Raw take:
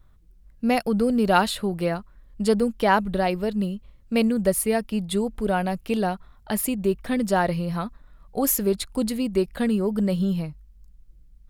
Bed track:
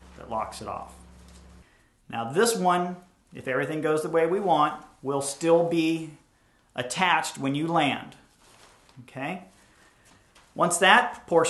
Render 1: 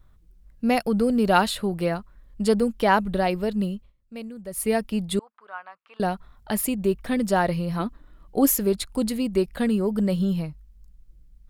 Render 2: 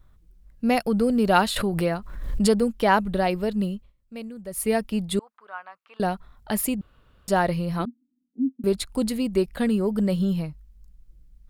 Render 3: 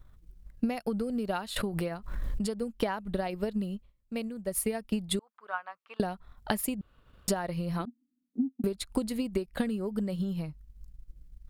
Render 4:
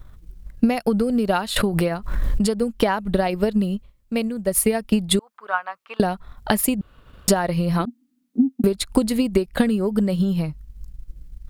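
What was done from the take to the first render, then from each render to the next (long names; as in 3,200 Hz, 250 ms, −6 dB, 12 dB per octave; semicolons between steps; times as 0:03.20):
0:03.75–0:04.68: duck −15.5 dB, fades 0.18 s; 0:05.19–0:06.00: four-pole ladder band-pass 1,300 Hz, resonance 60%; 0:07.79–0:08.47: hollow resonant body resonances 320/3,000 Hz, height 13 dB → 10 dB, ringing for 30 ms
0:01.56–0:02.50: background raised ahead of every attack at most 49 dB per second; 0:06.81–0:07.28: fill with room tone; 0:07.85–0:08.64: flat-topped band-pass 250 Hz, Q 6.7
downward compressor 16 to 1, threshold −29 dBFS, peak gain reduction 16.5 dB; transient designer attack +5 dB, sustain −5 dB
level +11.5 dB; brickwall limiter −3 dBFS, peak gain reduction 2.5 dB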